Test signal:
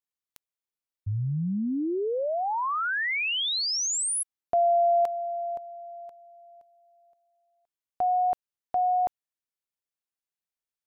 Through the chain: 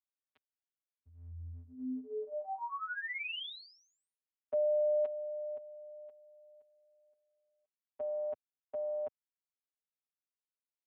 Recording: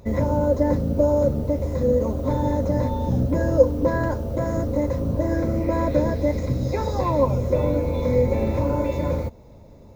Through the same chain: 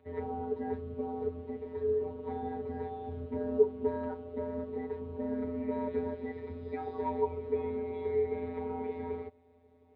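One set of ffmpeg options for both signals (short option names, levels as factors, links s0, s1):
-af "afftfilt=real='hypot(re,im)*cos(PI*b)':imag='0':win_size=1024:overlap=0.75,highpass=f=210:t=q:w=0.5412,highpass=f=210:t=q:w=1.307,lowpass=f=3400:t=q:w=0.5176,lowpass=f=3400:t=q:w=0.7071,lowpass=f=3400:t=q:w=1.932,afreqshift=-88,volume=0.398"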